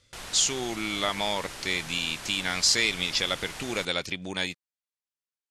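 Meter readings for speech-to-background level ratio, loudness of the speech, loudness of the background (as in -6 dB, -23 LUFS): 12.5 dB, -27.0 LUFS, -39.5 LUFS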